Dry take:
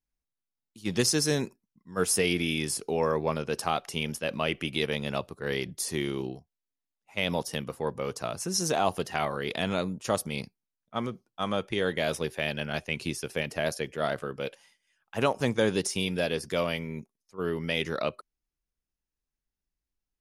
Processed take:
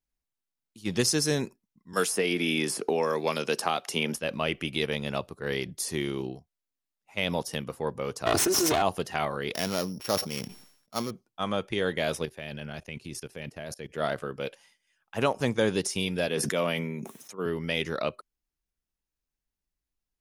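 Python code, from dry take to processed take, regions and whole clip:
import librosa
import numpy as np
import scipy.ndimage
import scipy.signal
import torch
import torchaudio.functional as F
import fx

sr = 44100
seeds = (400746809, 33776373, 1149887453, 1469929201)

y = fx.chain(x, sr, fx.highpass(hz=210.0, slope=12),
    fx.band_squash(depth_pct=100), at=(1.93, 4.16))
y = fx.chain(y, sr, fx.lower_of_two(delay_ms=2.8),
    fx.highpass(hz=96.0, slope=12),
    fx.env_flatten(amount_pct=100), at=(8.26, 8.82))
y = fx.chain(y, sr, fx.sample_sort(block=8),
    fx.low_shelf(hz=120.0, db=-8.0),
    fx.sustainer(db_per_s=85.0), at=(9.54, 11.11))
y = fx.chain(y, sr, fx.low_shelf(hz=260.0, db=5.5),
    fx.level_steps(step_db=19), at=(12.25, 13.94))
y = fx.chain(y, sr, fx.highpass(hz=140.0, slope=24),
    fx.peak_eq(hz=4700.0, db=-11.0, octaves=0.24),
    fx.sustainer(db_per_s=27.0), at=(16.28, 17.46))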